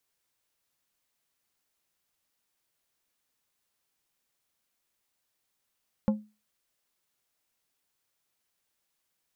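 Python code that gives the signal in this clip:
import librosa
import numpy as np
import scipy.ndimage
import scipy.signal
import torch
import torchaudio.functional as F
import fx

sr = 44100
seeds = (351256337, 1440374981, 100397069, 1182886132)

y = fx.strike_glass(sr, length_s=0.89, level_db=-18.0, body='plate', hz=212.0, decay_s=0.29, tilt_db=7.5, modes=5)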